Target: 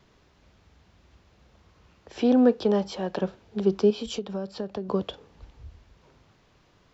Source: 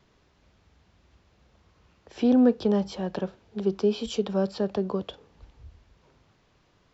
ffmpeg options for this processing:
-filter_complex "[0:a]asettb=1/sr,asplit=3[a][b][c];[a]atrim=end=2.214[d];[b]atrim=start=2.21:end=3.21,asetpts=PTS-STARTPTS,afade=t=in:d=0.004:c=qsin,afade=t=out:st=0.996:d=0.004:c=qsin,bass=f=250:g=-7,treble=f=4k:g=-1[e];[c]atrim=start=3.206[f];[d][e]acrossfade=d=0.004:c1=hsin:c2=qsin[g];[g][f]acrossfade=d=0.004:c1=qsin:c2=hsin,asettb=1/sr,asplit=3[h][i][j];[h]atrim=end=3.904[k];[i]atrim=start=3.9:end=4.89,asetpts=PTS-STARTPTS,afade=t=in:d=0.004:c=qsin,afade=t=out:st=0.986:d=0.004:c=qsin,acompressor=threshold=-32dB:ratio=6[l];[j]atrim=start=4.886[m];[k][l]acrossfade=d=0.004:c1=hsin:c2=qsin[n];[n][m]acrossfade=d=0.004:c1=qsin:c2=hsin,volume=3dB"

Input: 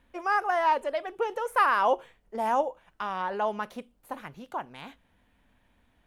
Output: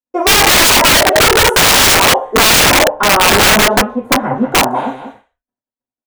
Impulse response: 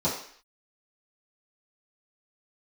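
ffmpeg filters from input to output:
-filter_complex "[0:a]aecho=1:1:188:0.355,alimiter=limit=-17dB:level=0:latency=1:release=121,asettb=1/sr,asplit=3[a][b][c];[a]atrim=end=2.674[d];[b]atrim=start=2.67:end=4.67,asetpts=PTS-STARTPTS,afade=t=in:d=0.004:c=qsin,afade=t=out:st=1.996:d=0.004:c=qsin,bass=f=250:g=8,treble=f=4k:g=-15[e];[c]atrim=start=4.666[f];[d][e]acrossfade=d=0.004:c1=hsin:c2=qsin[g];[g][f]acrossfade=d=0.004:c1=qsin:c2=hsin,acontrast=84,equalizer=f=590:t=o:w=1.6:g=8.5,bandreject=f=150.5:t=h:w=4,bandreject=f=301:t=h:w=4,bandreject=f=451.5:t=h:w=4,bandreject=f=602:t=h:w=4,bandreject=f=752.5:t=h:w=4,bandreject=f=903:t=h:w=4,bandreject=f=1.0535k:t=h:w=4,bandreject=f=1.204k:t=h:w=4,bandreject=f=1.3545k:t=h:w=4,bandreject=f=1.505k:t=h:w=4,agate=range=-57dB:threshold=-49dB:ratio=16:detection=peak[h];[1:a]atrim=start_sample=2205,asetrate=66150,aresample=44100[i];[h][i]afir=irnorm=-1:irlink=0,aeval=exprs='(mod(1.5*val(0)+1,2)-1)/1.5':c=same"

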